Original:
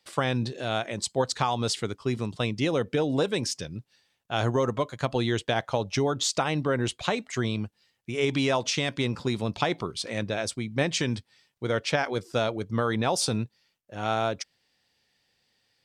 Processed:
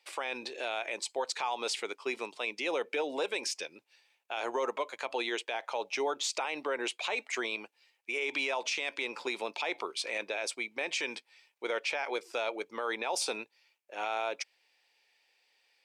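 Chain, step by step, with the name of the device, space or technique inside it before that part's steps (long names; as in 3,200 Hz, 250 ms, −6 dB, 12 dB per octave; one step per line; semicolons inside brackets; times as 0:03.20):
laptop speaker (high-pass filter 380 Hz 24 dB per octave; parametric band 890 Hz +6 dB 0.33 octaves; parametric band 2,400 Hz +11 dB 0.39 octaves; brickwall limiter −20.5 dBFS, peak gain reduction 11.5 dB)
level −2.5 dB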